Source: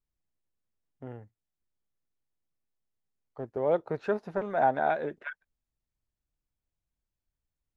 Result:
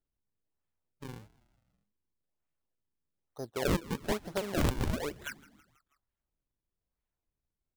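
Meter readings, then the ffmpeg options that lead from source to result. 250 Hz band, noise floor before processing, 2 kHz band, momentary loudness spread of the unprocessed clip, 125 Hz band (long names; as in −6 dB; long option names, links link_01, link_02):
+3.0 dB, below −85 dBFS, −3.5 dB, 19 LU, +7.5 dB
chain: -filter_complex "[0:a]acrusher=samples=39:mix=1:aa=0.000001:lfo=1:lforange=62.4:lforate=1.1,asplit=5[link_01][link_02][link_03][link_04][link_05];[link_02]adelay=162,afreqshift=-79,volume=-21dB[link_06];[link_03]adelay=324,afreqshift=-158,volume=-25.9dB[link_07];[link_04]adelay=486,afreqshift=-237,volume=-30.8dB[link_08];[link_05]adelay=648,afreqshift=-316,volume=-35.6dB[link_09];[link_01][link_06][link_07][link_08][link_09]amix=inputs=5:normalize=0,aeval=exprs='(mod(8.91*val(0)+1,2)-1)/8.91':channel_layout=same,volume=-2.5dB"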